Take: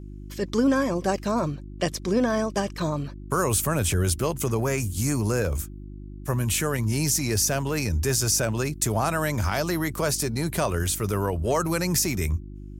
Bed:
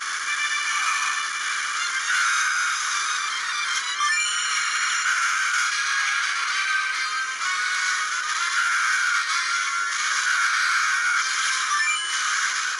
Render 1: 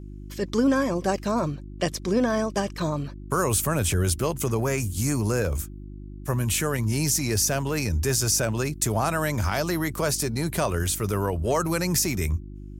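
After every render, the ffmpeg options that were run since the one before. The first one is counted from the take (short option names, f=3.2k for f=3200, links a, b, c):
-af anull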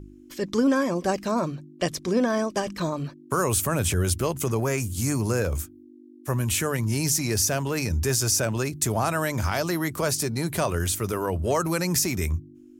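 -af "bandreject=f=50:t=h:w=4,bandreject=f=100:t=h:w=4,bandreject=f=150:t=h:w=4,bandreject=f=200:t=h:w=4"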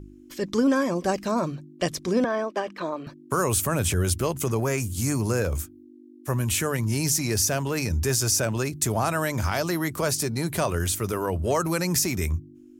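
-filter_complex "[0:a]asettb=1/sr,asplit=3[a][b][c];[a]atrim=end=2.244[d];[b]atrim=start=2.24:end=3.07,asetpts=PTS-STARTPTS,afade=t=in:d=0.004:c=qsin,afade=t=out:st=0.826:d=0.004:c=qsin,acrossover=split=250 3500:gain=0.0708 1 0.158[e][f][g];[e][f][g]amix=inputs=3:normalize=0[h];[c]atrim=start=3.066[i];[d][h]acrossfade=d=0.004:c1=hsin:c2=qsin[j];[j][i]acrossfade=d=0.004:c1=qsin:c2=hsin"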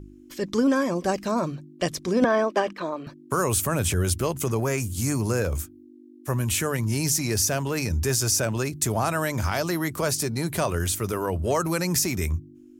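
-filter_complex "[0:a]asettb=1/sr,asplit=3[a][b][c];[a]atrim=end=2.224[d];[b]atrim=start=2.22:end=2.73,asetpts=PTS-STARTPTS,afade=t=in:d=0.004:c=qsin,afade=t=out:st=0.506:d=0.004:c=qsin,acontrast=27[e];[c]atrim=start=2.726[f];[d][e]acrossfade=d=0.004:c1=hsin:c2=qsin[g];[g][f]acrossfade=d=0.004:c1=qsin:c2=hsin"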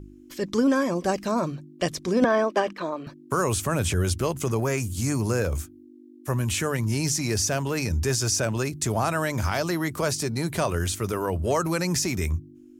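-filter_complex "[0:a]acrossover=split=8500[a][b];[b]acompressor=threshold=-41dB:ratio=4:attack=1:release=60[c];[a][c]amix=inputs=2:normalize=0"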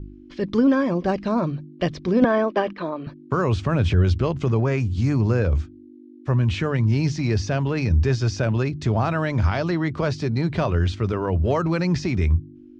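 -af "lowpass=f=4.3k:w=0.5412,lowpass=f=4.3k:w=1.3066,lowshelf=f=250:g=8.5"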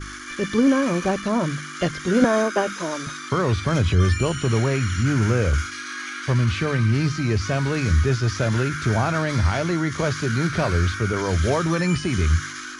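-filter_complex "[1:a]volume=-9.5dB[a];[0:a][a]amix=inputs=2:normalize=0"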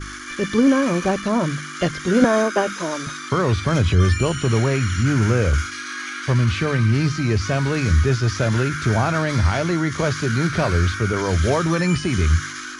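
-af "volume=2dB"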